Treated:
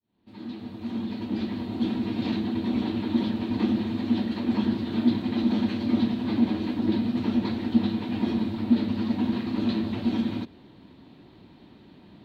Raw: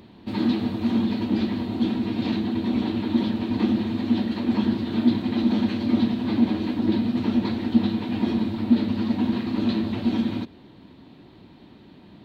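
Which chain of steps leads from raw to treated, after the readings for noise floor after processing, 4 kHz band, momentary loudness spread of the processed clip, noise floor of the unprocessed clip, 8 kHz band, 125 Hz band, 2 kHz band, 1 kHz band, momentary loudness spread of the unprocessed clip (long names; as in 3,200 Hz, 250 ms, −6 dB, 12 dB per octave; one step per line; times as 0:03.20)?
−52 dBFS, −3.0 dB, 7 LU, −49 dBFS, can't be measured, −3.0 dB, −3.0 dB, −3.0 dB, 3 LU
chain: fade in at the beginning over 2.00 s
level −2.5 dB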